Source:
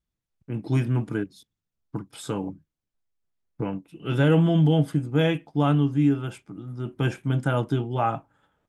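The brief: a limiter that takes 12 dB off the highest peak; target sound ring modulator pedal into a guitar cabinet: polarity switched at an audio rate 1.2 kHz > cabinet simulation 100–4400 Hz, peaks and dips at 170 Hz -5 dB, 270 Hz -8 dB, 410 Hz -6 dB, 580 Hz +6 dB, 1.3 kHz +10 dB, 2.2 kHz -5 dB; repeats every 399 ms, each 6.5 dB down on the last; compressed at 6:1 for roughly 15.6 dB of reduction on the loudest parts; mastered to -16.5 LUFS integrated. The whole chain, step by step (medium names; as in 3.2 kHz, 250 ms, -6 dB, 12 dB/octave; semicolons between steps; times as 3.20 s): compression 6:1, threshold -33 dBFS; peak limiter -33.5 dBFS; feedback delay 399 ms, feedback 47%, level -6.5 dB; polarity switched at an audio rate 1.2 kHz; cabinet simulation 100–4400 Hz, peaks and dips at 170 Hz -5 dB, 270 Hz -8 dB, 410 Hz -6 dB, 580 Hz +6 dB, 1.3 kHz +10 dB, 2.2 kHz -5 dB; trim +19.5 dB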